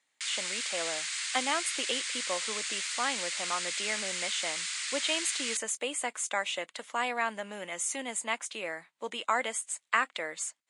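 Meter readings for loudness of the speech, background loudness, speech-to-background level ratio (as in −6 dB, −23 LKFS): −33.5 LKFS, −32.5 LKFS, −1.0 dB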